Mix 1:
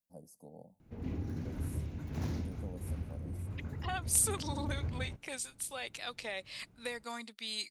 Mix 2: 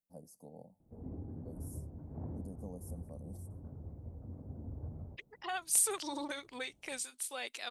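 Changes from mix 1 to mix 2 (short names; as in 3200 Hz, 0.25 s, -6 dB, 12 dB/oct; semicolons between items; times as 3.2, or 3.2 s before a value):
second voice: entry +1.60 s; background: add ladder low-pass 930 Hz, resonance 30%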